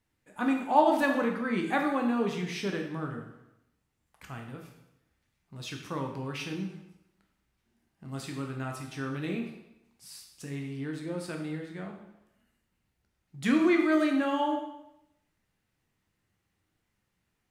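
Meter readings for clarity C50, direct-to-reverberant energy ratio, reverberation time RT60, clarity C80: 6.0 dB, 1.5 dB, 0.85 s, 8.0 dB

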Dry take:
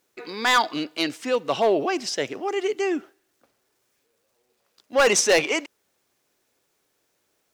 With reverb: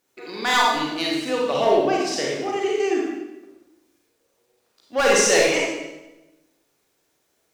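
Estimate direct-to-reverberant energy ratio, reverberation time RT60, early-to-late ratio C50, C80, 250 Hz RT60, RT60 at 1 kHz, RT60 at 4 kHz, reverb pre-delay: −3.5 dB, 1.0 s, −0.5 dB, 2.5 dB, 1.3 s, 0.95 s, 0.90 s, 31 ms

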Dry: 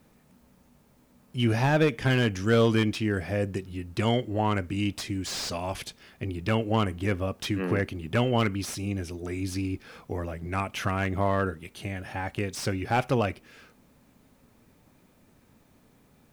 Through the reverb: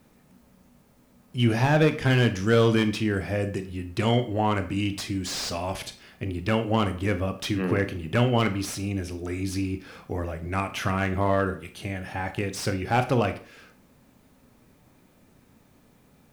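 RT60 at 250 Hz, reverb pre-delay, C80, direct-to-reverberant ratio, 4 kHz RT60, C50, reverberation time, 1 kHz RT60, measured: 0.40 s, 25 ms, 17.5 dB, 9.0 dB, 0.35 s, 13.0 dB, 0.45 s, 0.45 s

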